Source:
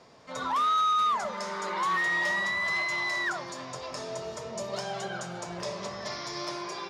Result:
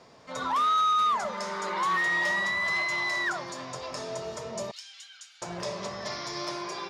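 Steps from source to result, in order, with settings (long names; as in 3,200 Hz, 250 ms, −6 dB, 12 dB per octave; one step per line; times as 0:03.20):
0:04.71–0:05.42: four-pole ladder high-pass 2,100 Hz, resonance 25%
level +1 dB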